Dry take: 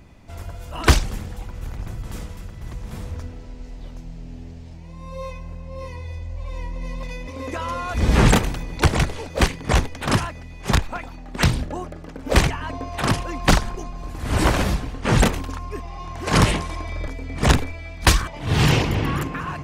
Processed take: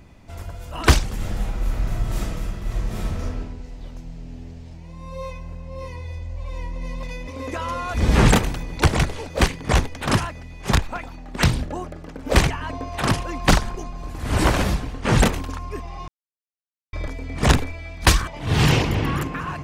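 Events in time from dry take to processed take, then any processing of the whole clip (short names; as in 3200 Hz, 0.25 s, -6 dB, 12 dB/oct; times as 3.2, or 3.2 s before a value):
1.16–3.39 reverb throw, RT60 0.8 s, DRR -5.5 dB
16.08–16.93 mute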